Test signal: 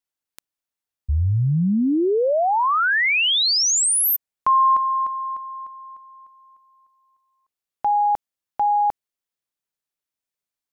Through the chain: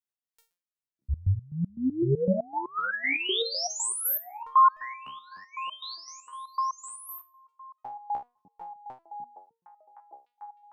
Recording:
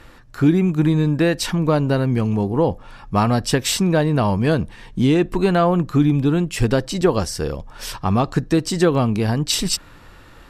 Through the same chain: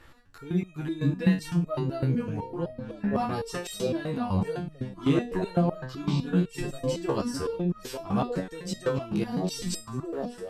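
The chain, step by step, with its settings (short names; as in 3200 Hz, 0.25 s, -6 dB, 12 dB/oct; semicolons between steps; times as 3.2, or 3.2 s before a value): delay with a stepping band-pass 0.605 s, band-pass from 190 Hz, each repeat 1.4 oct, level 0 dB; stepped resonator 7.9 Hz 68–630 Hz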